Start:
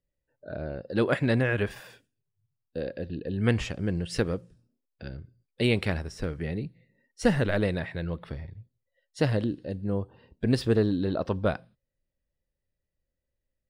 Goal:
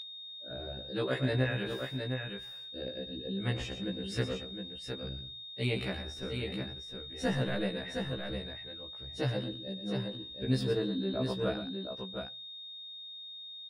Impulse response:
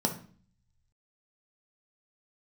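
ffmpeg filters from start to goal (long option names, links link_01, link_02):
-af "aecho=1:1:117|713:0.316|0.501,aeval=exprs='val(0)+0.0355*sin(2*PI*3700*n/s)':channel_layout=same,afftfilt=real='re*1.73*eq(mod(b,3),0)':imag='im*1.73*eq(mod(b,3),0)':win_size=2048:overlap=0.75,volume=-5dB"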